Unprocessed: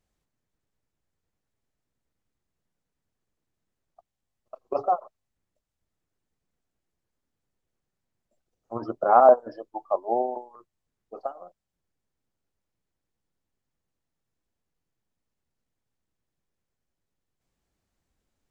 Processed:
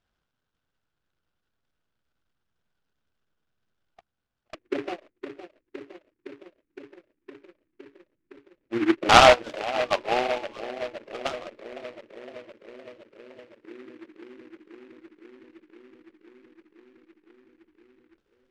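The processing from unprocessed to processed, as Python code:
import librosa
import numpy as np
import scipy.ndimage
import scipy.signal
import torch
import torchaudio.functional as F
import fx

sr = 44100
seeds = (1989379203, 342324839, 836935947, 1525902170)

y = fx.echo_bbd(x, sr, ms=512, stages=2048, feedback_pct=81, wet_db=-9)
y = fx.filter_lfo_lowpass(y, sr, shape='square', hz=0.11, low_hz=320.0, high_hz=1500.0, q=7.7)
y = fx.noise_mod_delay(y, sr, seeds[0], noise_hz=1600.0, depth_ms=0.11)
y = F.gain(torch.from_numpy(y), -2.0).numpy()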